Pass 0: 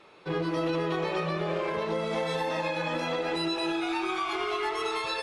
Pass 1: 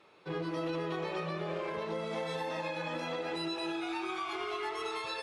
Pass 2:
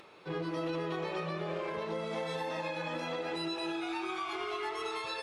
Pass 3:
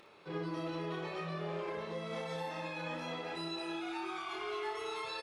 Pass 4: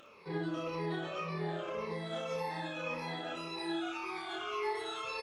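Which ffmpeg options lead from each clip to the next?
ffmpeg -i in.wav -af "highpass=41,volume=-6.5dB" out.wav
ffmpeg -i in.wav -af "acompressor=mode=upward:threshold=-49dB:ratio=2.5" out.wav
ffmpeg -i in.wav -af "aecho=1:1:29|60:0.631|0.473,volume=-5.5dB" out.wav
ffmpeg -i in.wav -af "afftfilt=real='re*pow(10,12/40*sin(2*PI*(0.86*log(max(b,1)*sr/1024/100)/log(2)-(-1.8)*(pts-256)/sr)))':imag='im*pow(10,12/40*sin(2*PI*(0.86*log(max(b,1)*sr/1024/100)/log(2)-(-1.8)*(pts-256)/sr)))':win_size=1024:overlap=0.75" out.wav

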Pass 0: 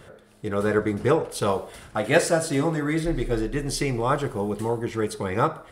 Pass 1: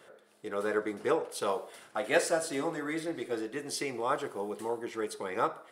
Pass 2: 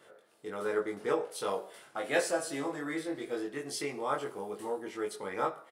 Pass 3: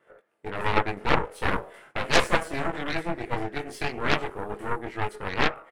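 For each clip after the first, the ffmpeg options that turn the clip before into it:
ffmpeg -i in.wav -af "highpass=330,volume=-6.5dB" out.wav
ffmpeg -i in.wav -filter_complex "[0:a]asplit=2[link_01][link_02];[link_02]adelay=21,volume=-2dB[link_03];[link_01][link_03]amix=inputs=2:normalize=0,volume=-4dB" out.wav
ffmpeg -i in.wav -af "agate=range=-11dB:threshold=-57dB:ratio=16:detection=peak,highshelf=frequency=3000:width_type=q:width=1.5:gain=-9.5,aeval=exprs='0.211*(cos(1*acos(clip(val(0)/0.211,-1,1)))-cos(1*PI/2))+0.0531*(cos(7*acos(clip(val(0)/0.211,-1,1)))-cos(7*PI/2))+0.0473*(cos(8*acos(clip(val(0)/0.211,-1,1)))-cos(8*PI/2))':channel_layout=same,volume=6.5dB" out.wav

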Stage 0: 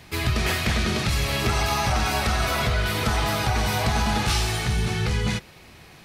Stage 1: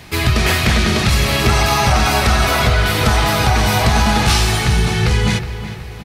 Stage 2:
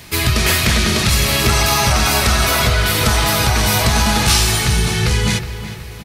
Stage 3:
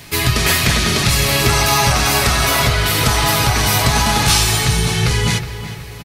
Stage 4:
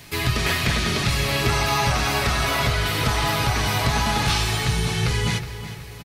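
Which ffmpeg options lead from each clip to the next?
ffmpeg -i in.wav -filter_complex "[0:a]asplit=2[link_01][link_02];[link_02]adelay=368,lowpass=frequency=3200:poles=1,volume=-11.5dB,asplit=2[link_03][link_04];[link_04]adelay=368,lowpass=frequency=3200:poles=1,volume=0.5,asplit=2[link_05][link_06];[link_06]adelay=368,lowpass=frequency=3200:poles=1,volume=0.5,asplit=2[link_07][link_08];[link_08]adelay=368,lowpass=frequency=3200:poles=1,volume=0.5,asplit=2[link_09][link_10];[link_10]adelay=368,lowpass=frequency=3200:poles=1,volume=0.5[link_11];[link_01][link_03][link_05][link_07][link_09][link_11]amix=inputs=6:normalize=0,volume=8.5dB" out.wav
ffmpeg -i in.wav -af "highshelf=frequency=5000:gain=10,bandreject=frequency=770:width=12,volume=-1.5dB" out.wav
ffmpeg -i in.wav -af "aecho=1:1:7.1:0.36" out.wav
ffmpeg -i in.wav -filter_complex "[0:a]acrossover=split=4600[link_01][link_02];[link_02]acompressor=threshold=-27dB:ratio=4:attack=1:release=60[link_03];[link_01][link_03]amix=inputs=2:normalize=0,volume=-6dB" out.wav

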